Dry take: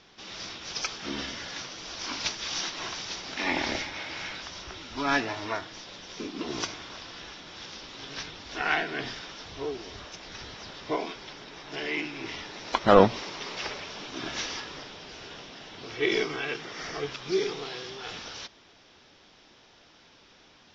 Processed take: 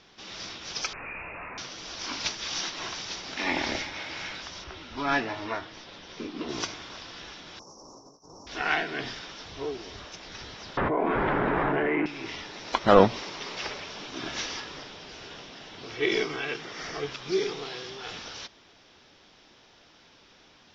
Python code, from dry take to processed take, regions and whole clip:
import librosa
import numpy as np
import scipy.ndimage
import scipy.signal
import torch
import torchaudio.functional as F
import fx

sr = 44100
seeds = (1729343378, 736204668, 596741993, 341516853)

y = fx.chain(x, sr, fx.clip_1bit(),
    fx.freq_invert(carrier_hz=2700), at=(0.93, 1.58))
y = fx.chain(y, sr, fx.air_absorb(metres=110.0),
    fx.doubler(ms=13.0, db=-11), at=(4.64, 6.49))
y = fx.chain(y, sr, fx.cheby1_bandstop(low_hz=1100.0, high_hz=5600.0, order=4),
    fx.low_shelf(hz=150.0, db=-9.0),
    fx.over_compress(threshold_db=-50.0, ratio=-0.5), at=(7.59, 8.47))
y = fx.chain(y, sr, fx.lowpass(hz=1700.0, slope=24),
    fx.env_flatten(amount_pct=100), at=(10.77, 12.06))